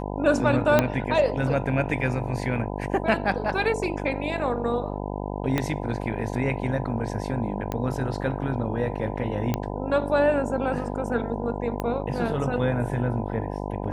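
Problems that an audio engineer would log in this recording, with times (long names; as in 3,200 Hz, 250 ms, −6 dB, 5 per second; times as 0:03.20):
mains buzz 50 Hz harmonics 20 −31 dBFS
0:00.79: click −5 dBFS
0:05.58: click −10 dBFS
0:07.72: click −15 dBFS
0:09.54: click −11 dBFS
0:11.80: click −15 dBFS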